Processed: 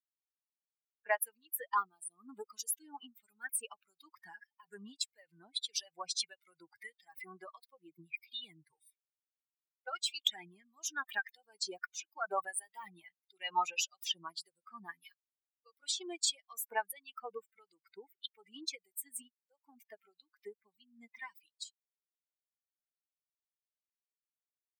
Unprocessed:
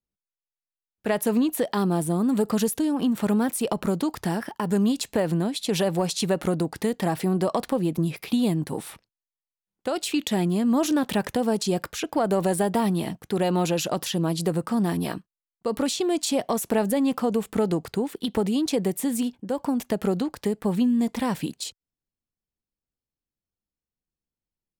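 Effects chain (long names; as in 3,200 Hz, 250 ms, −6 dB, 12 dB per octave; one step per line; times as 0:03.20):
spectral dynamics exaggerated over time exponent 3
auto-filter high-pass sine 1.6 Hz 960–4,700 Hz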